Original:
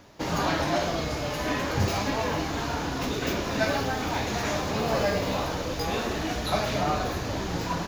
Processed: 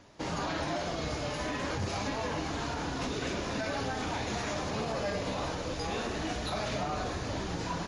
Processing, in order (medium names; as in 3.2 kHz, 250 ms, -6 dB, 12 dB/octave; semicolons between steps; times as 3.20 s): peak limiter -20 dBFS, peak gain reduction 8.5 dB; trim -4 dB; MP3 48 kbps 32 kHz